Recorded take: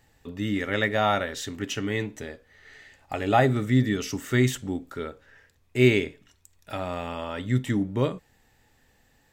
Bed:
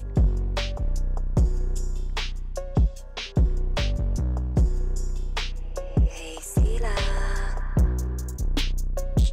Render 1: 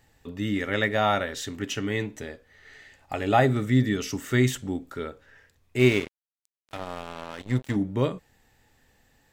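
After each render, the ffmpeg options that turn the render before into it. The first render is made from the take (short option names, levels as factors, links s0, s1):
-filter_complex "[0:a]asettb=1/sr,asplit=3[s0][s1][s2];[s0]atrim=end=5.794[s3];[s1]atrim=start=5.79:end=7.76,asetpts=PTS-STARTPTS,afade=t=in:d=0.004:c=qsin,afade=t=out:st=1.966:d=0.004:c=qsin,aeval=exprs='sgn(val(0))*max(abs(val(0))-0.02,0)':c=same[s4];[s2]atrim=start=7.756[s5];[s3][s4]acrossfade=d=0.004:c1=hsin:c2=qsin[s6];[s6][s5]acrossfade=d=0.004:c1=qsin:c2=hsin"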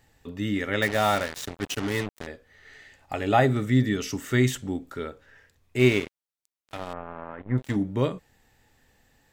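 -filter_complex "[0:a]asettb=1/sr,asplit=3[s0][s1][s2];[s0]atrim=end=0.824[s3];[s1]atrim=start=0.82:end=2.27,asetpts=PTS-STARTPTS,afade=t=in:d=0.004:c=qsin,afade=t=out:st=1.446:d=0.004:c=qsin,acrusher=bits=4:mix=0:aa=0.5[s4];[s2]atrim=start=2.266[s5];[s3][s4]acrossfade=d=0.004:c1=hsin:c2=qsin[s6];[s6][s5]acrossfade=d=0.004:c1=qsin:c2=hsin,asettb=1/sr,asplit=3[s7][s8][s9];[s7]atrim=end=6.934[s10];[s8]atrim=start=6.93:end=7.58,asetpts=PTS-STARTPTS,afade=t=in:d=0.004:c=qsin,afade=t=out:st=0.646:d=0.004:c=qsin,lowpass=f=1800:w=0.5412,lowpass=f=1800:w=1.3066[s11];[s9]atrim=start=7.576[s12];[s10][s11]acrossfade=d=0.004:c1=hsin:c2=qsin[s13];[s13][s12]acrossfade=d=0.004:c1=qsin:c2=hsin"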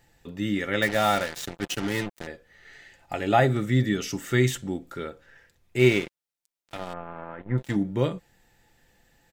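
-af "bandreject=f=1100:w=9.9,aecho=1:1:5.8:0.37"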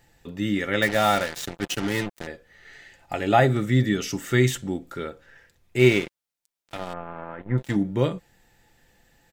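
-af "volume=1.26"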